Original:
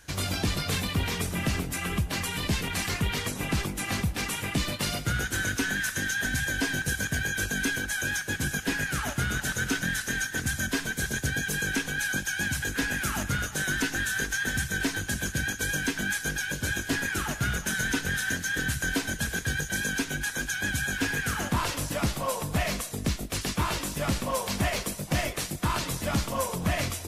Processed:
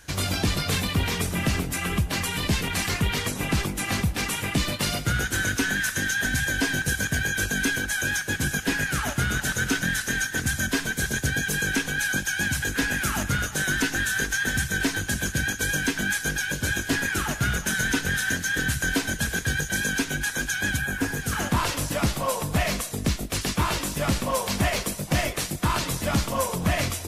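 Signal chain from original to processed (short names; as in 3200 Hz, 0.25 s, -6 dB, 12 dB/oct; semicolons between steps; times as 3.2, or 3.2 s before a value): 20.76–21.31 bell 7400 Hz -> 1600 Hz -10 dB 1.7 oct; gain +3.5 dB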